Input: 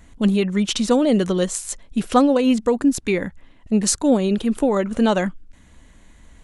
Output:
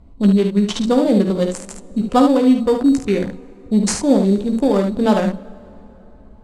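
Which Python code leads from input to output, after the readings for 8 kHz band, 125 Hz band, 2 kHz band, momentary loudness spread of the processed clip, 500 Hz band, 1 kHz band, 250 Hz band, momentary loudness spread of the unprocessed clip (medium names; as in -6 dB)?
-3.5 dB, +4.5 dB, -2.0 dB, 9 LU, +2.5 dB, +2.5 dB, +3.5 dB, 8 LU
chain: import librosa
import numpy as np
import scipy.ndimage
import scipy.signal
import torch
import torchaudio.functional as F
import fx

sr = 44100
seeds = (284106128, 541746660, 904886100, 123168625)

p1 = fx.wiener(x, sr, points=25)
p2 = fx.room_early_taps(p1, sr, ms=(15, 51, 73), db=(-8.0, -9.0, -6.5))
p3 = fx.sample_hold(p2, sr, seeds[0], rate_hz=4100.0, jitter_pct=0)
p4 = p2 + (p3 * librosa.db_to_amplitude(-8.5))
p5 = scipy.signal.sosfilt(scipy.signal.butter(2, 8800.0, 'lowpass', fs=sr, output='sos'), p4)
p6 = fx.rev_plate(p5, sr, seeds[1], rt60_s=4.0, hf_ratio=0.6, predelay_ms=0, drr_db=20.0)
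y = p6 * librosa.db_to_amplitude(-1.0)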